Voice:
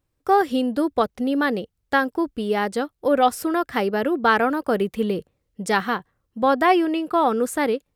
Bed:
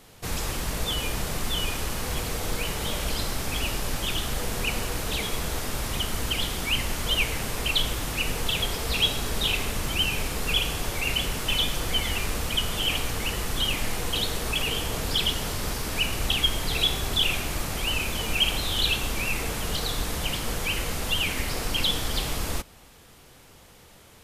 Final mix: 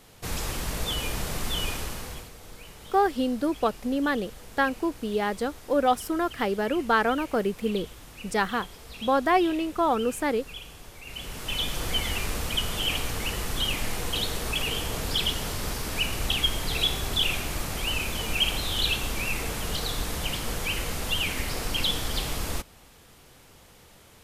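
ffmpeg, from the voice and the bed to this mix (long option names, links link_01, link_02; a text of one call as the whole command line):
ffmpeg -i stem1.wav -i stem2.wav -filter_complex "[0:a]adelay=2650,volume=-4.5dB[link_01];[1:a]volume=13.5dB,afade=type=out:start_time=1.69:duration=0.62:silence=0.177828,afade=type=in:start_time=11.05:duration=0.81:silence=0.177828[link_02];[link_01][link_02]amix=inputs=2:normalize=0" out.wav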